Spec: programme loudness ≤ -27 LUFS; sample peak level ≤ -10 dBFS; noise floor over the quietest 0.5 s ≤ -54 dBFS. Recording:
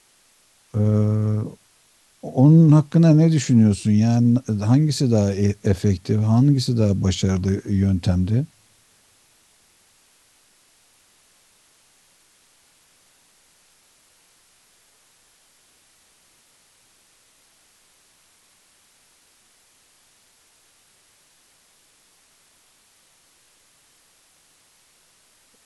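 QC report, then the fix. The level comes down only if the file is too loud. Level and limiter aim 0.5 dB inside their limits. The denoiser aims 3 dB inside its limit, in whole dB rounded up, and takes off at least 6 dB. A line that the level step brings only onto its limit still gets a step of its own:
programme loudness -18.5 LUFS: fail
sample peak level -5.0 dBFS: fail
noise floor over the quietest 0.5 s -58 dBFS: OK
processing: gain -9 dB

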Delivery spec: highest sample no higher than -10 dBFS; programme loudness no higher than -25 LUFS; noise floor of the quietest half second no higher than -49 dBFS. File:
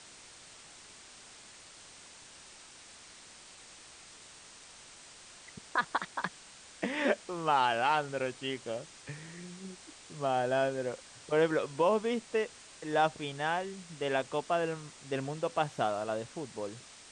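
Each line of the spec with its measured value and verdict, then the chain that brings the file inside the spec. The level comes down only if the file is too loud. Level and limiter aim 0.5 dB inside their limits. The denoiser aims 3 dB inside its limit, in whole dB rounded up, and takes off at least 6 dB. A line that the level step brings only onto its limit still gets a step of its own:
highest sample -15.5 dBFS: OK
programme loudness -33.0 LUFS: OK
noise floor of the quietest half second -53 dBFS: OK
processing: none

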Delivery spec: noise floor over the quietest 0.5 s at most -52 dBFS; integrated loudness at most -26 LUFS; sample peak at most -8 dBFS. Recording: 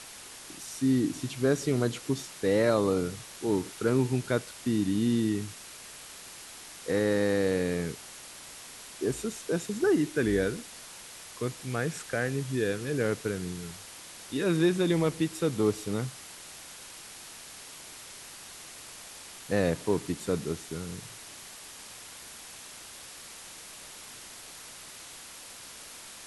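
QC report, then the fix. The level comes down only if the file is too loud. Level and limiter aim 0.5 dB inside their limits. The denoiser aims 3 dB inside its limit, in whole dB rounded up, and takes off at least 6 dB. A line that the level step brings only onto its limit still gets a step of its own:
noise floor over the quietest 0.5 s -46 dBFS: fail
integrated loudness -29.5 LUFS: OK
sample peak -12.0 dBFS: OK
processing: denoiser 9 dB, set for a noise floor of -46 dBFS

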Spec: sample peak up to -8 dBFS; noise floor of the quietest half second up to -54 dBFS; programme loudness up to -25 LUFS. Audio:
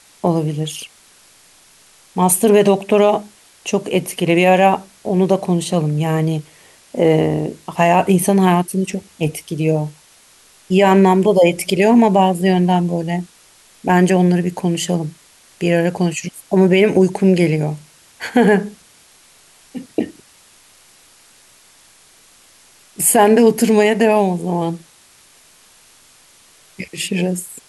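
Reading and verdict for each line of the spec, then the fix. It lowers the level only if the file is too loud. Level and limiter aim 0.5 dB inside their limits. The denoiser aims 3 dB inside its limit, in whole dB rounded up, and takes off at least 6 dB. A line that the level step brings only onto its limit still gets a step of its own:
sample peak -2.0 dBFS: fail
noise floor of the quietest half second -49 dBFS: fail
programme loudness -16.0 LUFS: fail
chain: gain -9.5 dB

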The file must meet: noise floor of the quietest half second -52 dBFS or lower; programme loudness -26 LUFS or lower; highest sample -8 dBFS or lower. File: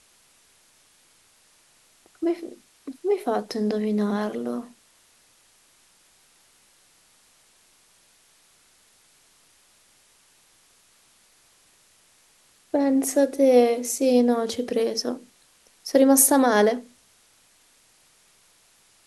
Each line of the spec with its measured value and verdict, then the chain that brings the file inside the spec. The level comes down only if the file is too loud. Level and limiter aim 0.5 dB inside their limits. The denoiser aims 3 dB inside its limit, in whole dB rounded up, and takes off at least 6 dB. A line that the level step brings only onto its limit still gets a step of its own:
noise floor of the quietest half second -60 dBFS: OK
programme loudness -22.0 LUFS: fail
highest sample -3.0 dBFS: fail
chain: gain -4.5 dB; limiter -8.5 dBFS

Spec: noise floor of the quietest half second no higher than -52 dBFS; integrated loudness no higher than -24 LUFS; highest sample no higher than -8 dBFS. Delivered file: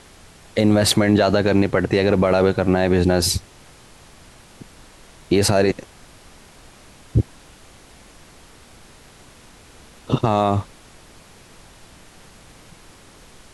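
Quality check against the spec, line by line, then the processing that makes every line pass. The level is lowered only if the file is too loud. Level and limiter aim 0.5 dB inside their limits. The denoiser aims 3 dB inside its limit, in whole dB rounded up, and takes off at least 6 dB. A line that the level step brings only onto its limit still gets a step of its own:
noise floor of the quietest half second -47 dBFS: fail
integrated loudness -19.0 LUFS: fail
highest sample -5.5 dBFS: fail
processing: gain -5.5 dB

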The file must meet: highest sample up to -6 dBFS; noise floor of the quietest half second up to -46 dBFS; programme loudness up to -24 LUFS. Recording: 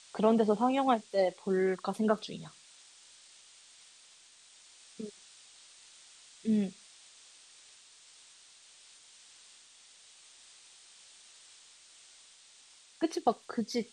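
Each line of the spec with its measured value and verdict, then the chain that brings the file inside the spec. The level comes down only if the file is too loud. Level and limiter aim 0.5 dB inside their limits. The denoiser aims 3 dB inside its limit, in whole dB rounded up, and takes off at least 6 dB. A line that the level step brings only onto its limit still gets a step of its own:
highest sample -13.5 dBFS: OK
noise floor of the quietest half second -59 dBFS: OK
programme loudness -31.5 LUFS: OK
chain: none

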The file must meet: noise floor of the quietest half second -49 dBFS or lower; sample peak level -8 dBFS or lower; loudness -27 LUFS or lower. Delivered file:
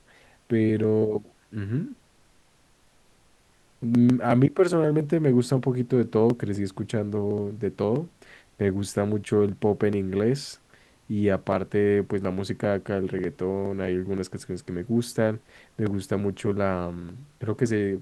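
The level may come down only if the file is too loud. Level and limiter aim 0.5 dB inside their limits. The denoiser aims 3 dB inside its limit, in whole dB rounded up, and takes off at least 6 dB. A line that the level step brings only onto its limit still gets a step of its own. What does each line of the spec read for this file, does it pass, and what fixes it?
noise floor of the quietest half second -60 dBFS: OK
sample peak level -6.0 dBFS: fail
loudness -25.5 LUFS: fail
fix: gain -2 dB; limiter -8.5 dBFS

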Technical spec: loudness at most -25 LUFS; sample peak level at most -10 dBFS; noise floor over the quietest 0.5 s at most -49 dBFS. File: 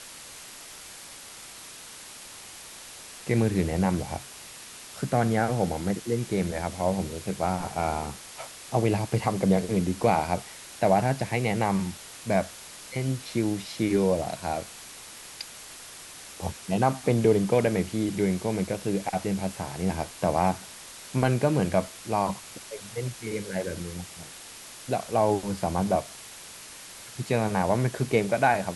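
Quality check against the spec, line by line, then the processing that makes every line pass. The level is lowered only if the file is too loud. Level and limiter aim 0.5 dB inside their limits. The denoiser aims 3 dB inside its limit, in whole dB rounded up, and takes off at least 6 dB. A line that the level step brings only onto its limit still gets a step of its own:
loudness -27.5 LUFS: OK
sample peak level -8.0 dBFS: fail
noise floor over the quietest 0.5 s -44 dBFS: fail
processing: denoiser 8 dB, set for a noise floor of -44 dBFS; limiter -10.5 dBFS

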